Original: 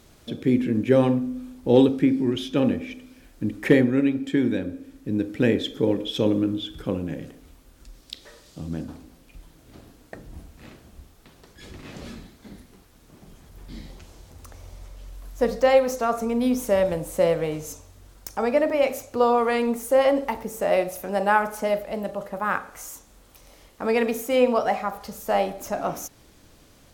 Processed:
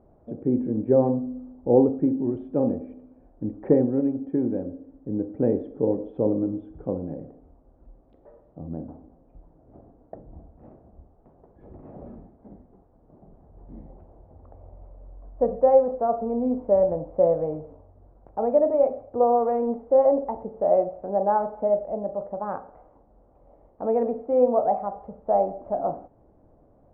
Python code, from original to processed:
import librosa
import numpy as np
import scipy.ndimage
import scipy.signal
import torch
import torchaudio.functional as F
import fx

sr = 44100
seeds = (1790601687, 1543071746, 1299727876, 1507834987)

y = fx.ladder_lowpass(x, sr, hz=850.0, resonance_pct=45)
y = y * librosa.db_to_amplitude(5.0)